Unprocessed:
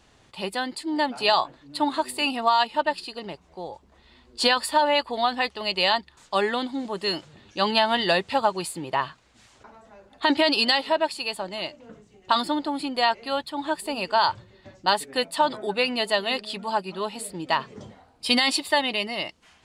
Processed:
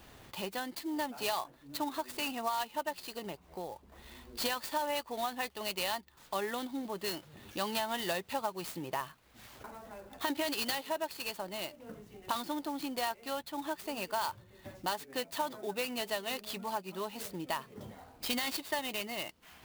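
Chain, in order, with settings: compression 2:1, threshold -48 dBFS, peak gain reduction 17.5 dB; sampling jitter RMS 0.03 ms; trim +3 dB

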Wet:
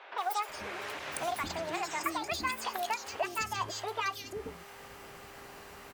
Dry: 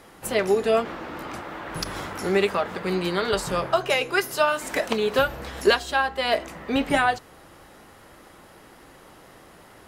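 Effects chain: gliding tape speed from 189% -> 144%; compression 2:1, threshold -38 dBFS, peak gain reduction 13 dB; mains buzz 400 Hz, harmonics 37, -56 dBFS -5 dB/octave; three bands offset in time mids, highs, lows 180/490 ms, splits 440/3400 Hz

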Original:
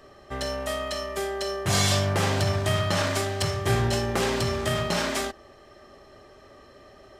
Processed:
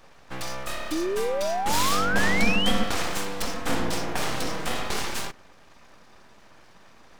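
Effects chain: 2.13–2.84 s: peaking EQ 110 Hz +12.5 dB 0.33 oct; full-wave rectifier; 0.91–2.71 s: painted sound rise 300–3300 Hz -27 dBFS

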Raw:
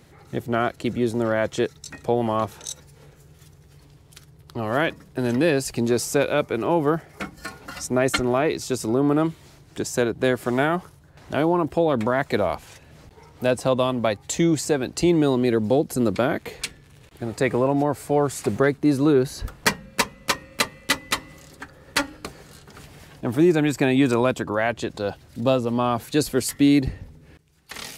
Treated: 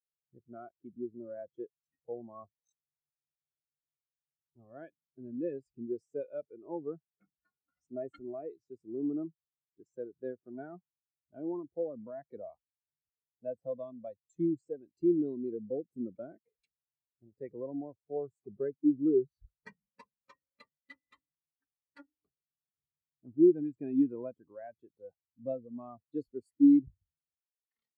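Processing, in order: spectral contrast expander 2.5:1; trim -7.5 dB

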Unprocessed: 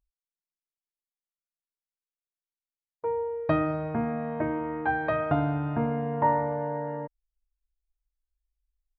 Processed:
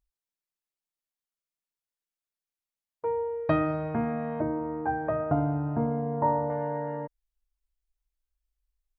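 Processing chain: 4.40–6.50 s: low-pass 1 kHz 12 dB/octave

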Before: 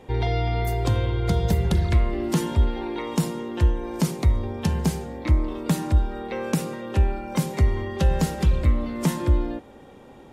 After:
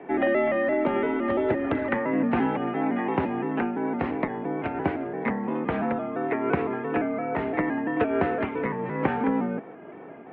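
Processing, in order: pitch shift switched off and on -1.5 st, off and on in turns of 171 ms; mistuned SSB -83 Hz 320–2400 Hz; trim +7 dB

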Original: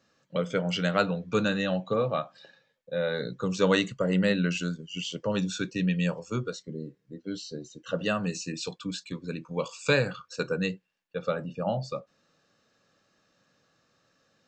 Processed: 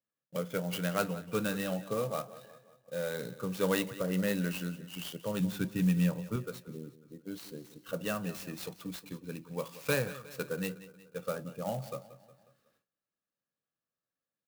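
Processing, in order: feedback delay 181 ms, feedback 50%, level -16 dB; gate with hold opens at -55 dBFS; 5.40–6.36 s: tone controls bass +8 dB, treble -3 dB; sampling jitter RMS 0.04 ms; trim -6.5 dB

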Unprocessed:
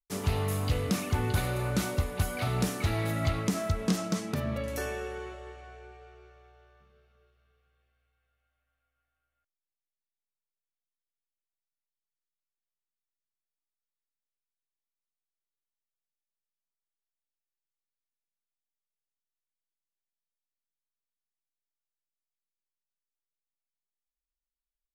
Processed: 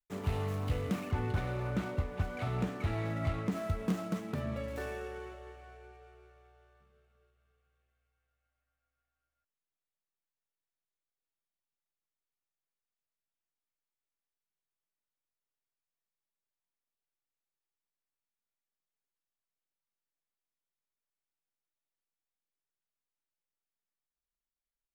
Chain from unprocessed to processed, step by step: median filter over 9 samples; 1.11–3.52 s: treble shelf 6.5 kHz -10 dB; trim -4.5 dB

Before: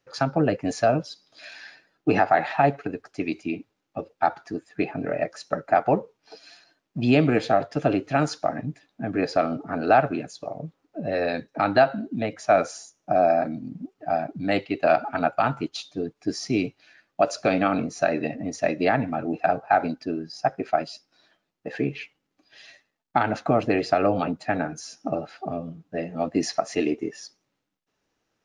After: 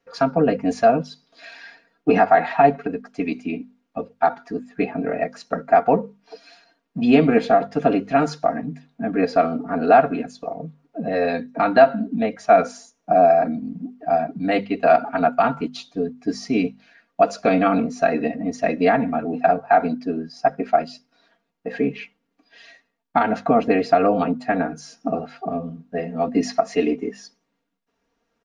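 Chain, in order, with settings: treble shelf 3.4 kHz -9.5 dB; hum notches 50/100/150/200/250 Hz; comb 4.3 ms, depth 82%; trim +2.5 dB

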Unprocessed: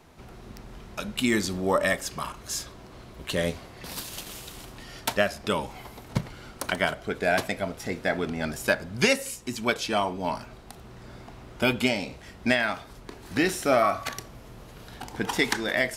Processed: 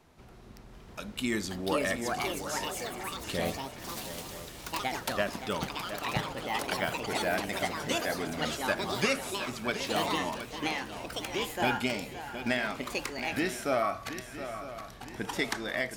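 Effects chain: shuffle delay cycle 958 ms, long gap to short 3:1, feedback 43%, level -11 dB; ever faster or slower copies 734 ms, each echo +4 st, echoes 3; trim -7 dB

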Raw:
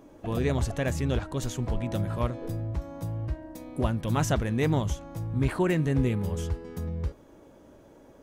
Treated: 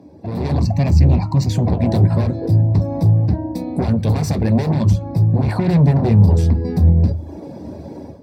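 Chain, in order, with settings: reverb removal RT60 0.68 s; 0.60–1.49 s: static phaser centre 2.3 kHz, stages 8; in parallel at -10 dB: sine folder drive 18 dB, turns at -11.5 dBFS; on the sum: dynamic bell 5.2 kHz, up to -5 dB, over -50 dBFS, Q 4; level rider gain up to 15.5 dB; peak limiter -7.5 dBFS, peak gain reduction 6 dB; 5.42–6.28 s: tone controls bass +3 dB, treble -3 dB; reverberation RT60 0.35 s, pre-delay 3 ms, DRR 9 dB; trim -17.5 dB

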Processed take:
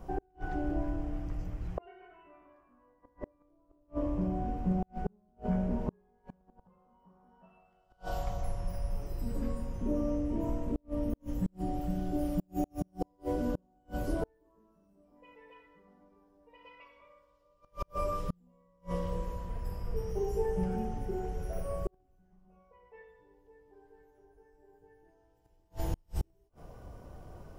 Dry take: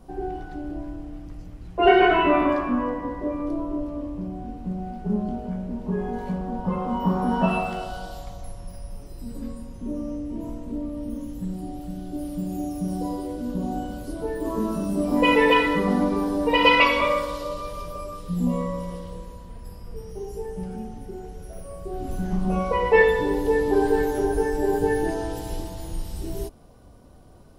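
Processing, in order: fifteen-band graphic EQ 250 Hz -7 dB, 4 kHz -9 dB, 10 kHz -11 dB; inverted gate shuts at -23 dBFS, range -40 dB; trim +2.5 dB

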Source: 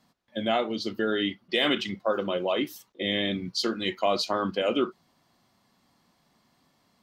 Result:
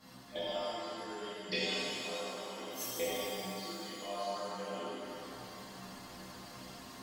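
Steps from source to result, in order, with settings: inverted gate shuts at -30 dBFS, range -33 dB; inharmonic resonator 61 Hz, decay 0.29 s, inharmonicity 0.008; pitch-shifted reverb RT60 2.7 s, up +7 st, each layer -8 dB, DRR -12 dB; trim +12 dB

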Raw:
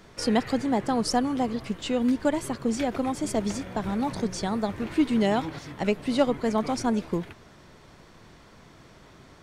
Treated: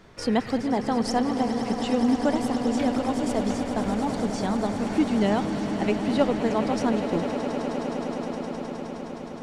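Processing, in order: treble shelf 5.2 kHz -7 dB; echo with a slow build-up 104 ms, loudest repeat 8, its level -13 dB

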